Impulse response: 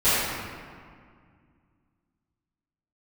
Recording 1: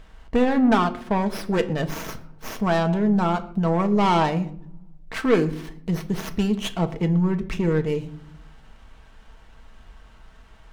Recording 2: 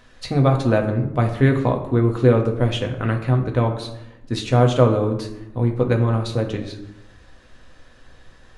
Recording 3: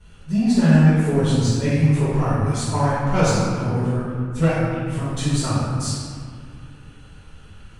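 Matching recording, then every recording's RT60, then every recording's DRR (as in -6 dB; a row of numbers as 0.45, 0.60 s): 3; 0.60, 0.85, 2.0 s; 5.5, 2.0, -19.0 dB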